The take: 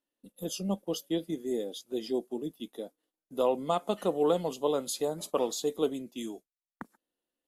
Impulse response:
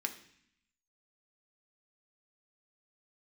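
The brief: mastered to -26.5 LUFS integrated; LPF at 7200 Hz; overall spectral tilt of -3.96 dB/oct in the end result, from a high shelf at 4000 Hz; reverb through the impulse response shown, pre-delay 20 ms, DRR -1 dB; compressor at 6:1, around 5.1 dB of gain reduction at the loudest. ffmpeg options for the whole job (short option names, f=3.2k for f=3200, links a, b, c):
-filter_complex "[0:a]lowpass=7.2k,highshelf=f=4k:g=7.5,acompressor=threshold=-27dB:ratio=6,asplit=2[a][b];[1:a]atrim=start_sample=2205,adelay=20[c];[b][c]afir=irnorm=-1:irlink=0,volume=-0.5dB[d];[a][d]amix=inputs=2:normalize=0,volume=5.5dB"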